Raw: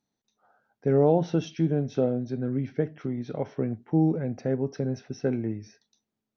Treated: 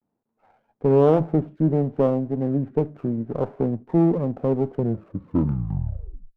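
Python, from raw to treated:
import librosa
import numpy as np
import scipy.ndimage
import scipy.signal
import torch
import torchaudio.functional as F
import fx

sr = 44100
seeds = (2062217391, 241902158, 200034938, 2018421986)

p1 = fx.tape_stop_end(x, sr, length_s=1.56)
p2 = scipy.signal.sosfilt(scipy.signal.butter(4, 1100.0, 'lowpass', fs=sr, output='sos'), p1)
p3 = fx.low_shelf(p2, sr, hz=110.0, db=-6.0)
p4 = 10.0 ** (-24.0 / 20.0) * np.tanh(p3 / 10.0 ** (-24.0 / 20.0))
p5 = p3 + (p4 * 10.0 ** (-4.0 / 20.0))
p6 = fx.vibrato(p5, sr, rate_hz=0.55, depth_cents=92.0)
p7 = fx.running_max(p6, sr, window=9)
y = p7 * 10.0 ** (3.0 / 20.0)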